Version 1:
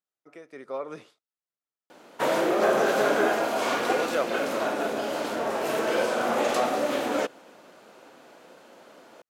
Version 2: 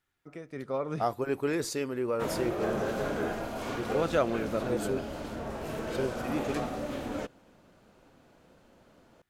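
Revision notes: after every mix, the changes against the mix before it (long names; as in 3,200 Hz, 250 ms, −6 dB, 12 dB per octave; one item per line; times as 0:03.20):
second voice: unmuted
background −11.5 dB
master: remove high-pass filter 370 Hz 12 dB per octave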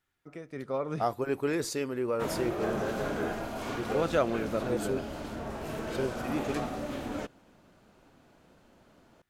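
background: add parametric band 510 Hz −4 dB 0.28 octaves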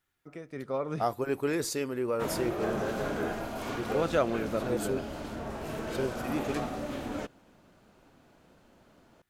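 second voice: add high-shelf EQ 8,900 Hz +6 dB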